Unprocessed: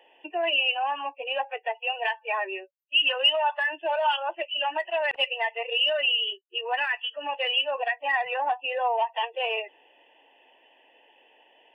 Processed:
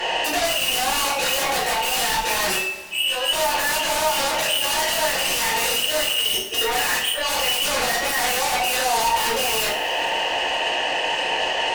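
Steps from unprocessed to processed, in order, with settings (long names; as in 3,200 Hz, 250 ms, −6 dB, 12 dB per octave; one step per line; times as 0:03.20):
compressor on every frequency bin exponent 0.6
0:06.63–0:07.38: noise gate −25 dBFS, range −9 dB
noise reduction from a noise print of the clip's start 9 dB
in parallel at +2 dB: downward compressor, threshold −39 dBFS, peak gain reduction 21.5 dB
on the sum: soft clipping −25.5 dBFS, distortion −8 dB
0:02.55–0:03.33: tuned comb filter 330 Hz, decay 0.31 s, harmonics all, mix 90%
sine wavefolder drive 11 dB, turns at −25.5 dBFS
surface crackle 100 per second −44 dBFS
coupled-rooms reverb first 0.46 s, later 2.4 s, from −18 dB, DRR −8 dB
level −2 dB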